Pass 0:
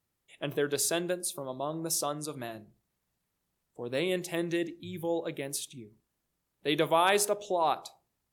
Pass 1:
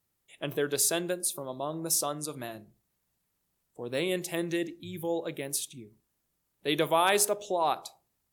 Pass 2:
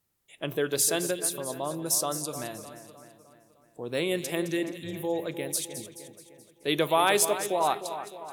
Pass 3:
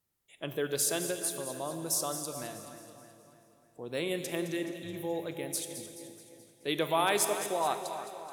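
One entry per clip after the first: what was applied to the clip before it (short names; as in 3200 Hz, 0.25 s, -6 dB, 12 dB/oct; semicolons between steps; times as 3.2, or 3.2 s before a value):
high shelf 7400 Hz +6.5 dB
split-band echo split 2300 Hz, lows 0.305 s, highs 0.214 s, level -11 dB; gain +1.5 dB
reverb RT60 2.7 s, pre-delay 24 ms, DRR 9.5 dB; gain -5 dB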